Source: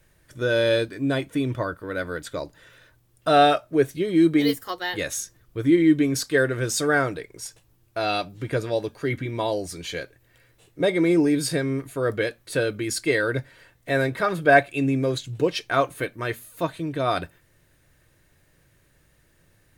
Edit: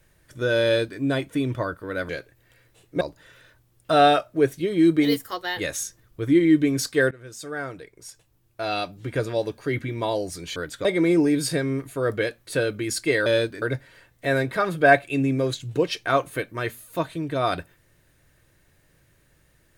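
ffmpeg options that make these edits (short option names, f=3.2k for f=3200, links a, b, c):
-filter_complex "[0:a]asplit=8[a][b][c][d][e][f][g][h];[a]atrim=end=2.092[i];[b]atrim=start=9.928:end=10.852[j];[c]atrim=start=2.378:end=6.48,asetpts=PTS-STARTPTS,afade=t=out:st=4.098:d=0.004:c=hsin:silence=0.0944061[k];[d]atrim=start=6.48:end=9.932,asetpts=PTS-STARTPTS,afade=t=in:d=2.13:silence=0.0944061[l];[e]atrim=start=2.088:end=2.382[m];[f]atrim=start=10.848:end=13.262[n];[g]atrim=start=0.638:end=1.002[o];[h]atrim=start=13.258[p];[i][j]acrossfade=d=0.004:c1=hsin:c2=hsin[q];[k][l]concat=n=2:v=0:a=1[r];[q][r]acrossfade=d=0.004:c1=hsin:c2=hsin[s];[s][m]acrossfade=d=0.004:c1=hsin:c2=hsin[t];[t][n]acrossfade=d=0.004:c1=hsin:c2=hsin[u];[u][o]acrossfade=d=0.004:c1=hsin:c2=hsin[v];[v][p]acrossfade=d=0.004:c1=hsin:c2=hsin"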